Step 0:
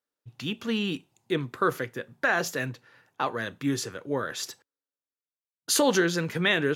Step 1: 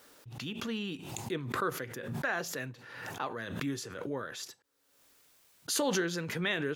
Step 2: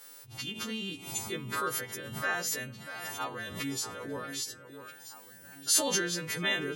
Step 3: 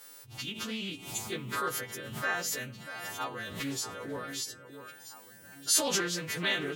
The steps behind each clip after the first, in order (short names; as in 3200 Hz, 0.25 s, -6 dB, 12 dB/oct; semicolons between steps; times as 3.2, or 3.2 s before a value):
backwards sustainer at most 47 dB/s; gain -8.5 dB
frequency quantiser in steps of 2 st; echo with dull and thin repeats by turns 0.641 s, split 2200 Hz, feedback 65%, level -10 dB; gain -1.5 dB
Doppler distortion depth 0.2 ms